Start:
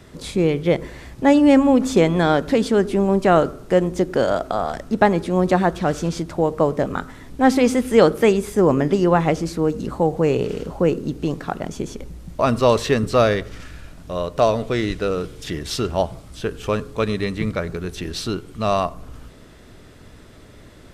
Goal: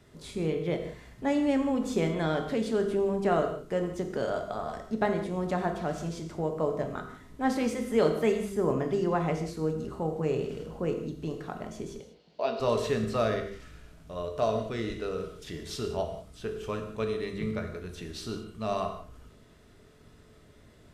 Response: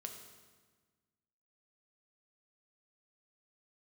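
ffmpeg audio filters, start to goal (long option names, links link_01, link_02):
-filter_complex "[0:a]asettb=1/sr,asplit=3[link_01][link_02][link_03];[link_01]atrim=end=11.994[link_04];[link_02]atrim=start=11.99:end=12.6,asetpts=PTS-STARTPTS,afade=type=in:duration=0.004:curve=qsin,afade=type=out:start_time=0.606:duration=0.004:curve=qsin,highpass=390,equalizer=frequency=430:width_type=q:width=4:gain=5,equalizer=frequency=730:width_type=q:width=4:gain=4,equalizer=frequency=1200:width_type=q:width=4:gain=-9,equalizer=frequency=1900:width_type=q:width=4:gain=-4,equalizer=frequency=2900:width_type=q:width=4:gain=5,equalizer=frequency=4400:width_type=q:width=4:gain=9,lowpass=frequency=4800:width=0.5412,lowpass=frequency=4800:width=1.3066[link_05];[link_03]atrim=start=12.596[link_06];[link_04][link_05]acrossfade=duration=0.004:curve1=hsin:curve2=qsin[link_07];[link_07][link_06]acrossfade=duration=0.004:curve1=qsin:curve2=hsin[link_08];[1:a]atrim=start_sample=2205,afade=type=out:start_time=0.25:duration=0.01,atrim=end_sample=11466[link_09];[link_08][link_09]afir=irnorm=-1:irlink=0,volume=-8dB"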